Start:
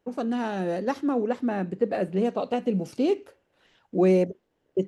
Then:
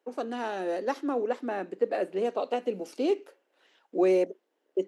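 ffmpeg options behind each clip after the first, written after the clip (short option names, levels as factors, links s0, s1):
-af "highpass=f=300:w=0.5412,highpass=f=300:w=1.3066,volume=0.841"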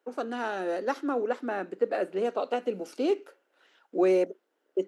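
-af "equalizer=f=1400:w=4.5:g=7.5"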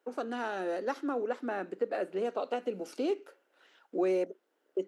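-af "acompressor=threshold=0.0158:ratio=1.5"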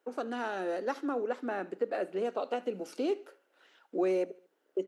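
-af "aecho=1:1:74|148|222:0.0708|0.0347|0.017"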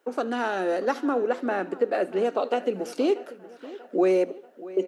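-filter_complex "[0:a]asplit=2[s0][s1];[s1]adelay=637,lowpass=f=3700:p=1,volume=0.133,asplit=2[s2][s3];[s3]adelay=637,lowpass=f=3700:p=1,volume=0.52,asplit=2[s4][s5];[s5]adelay=637,lowpass=f=3700:p=1,volume=0.52,asplit=2[s6][s7];[s7]adelay=637,lowpass=f=3700:p=1,volume=0.52[s8];[s0][s2][s4][s6][s8]amix=inputs=5:normalize=0,volume=2.51"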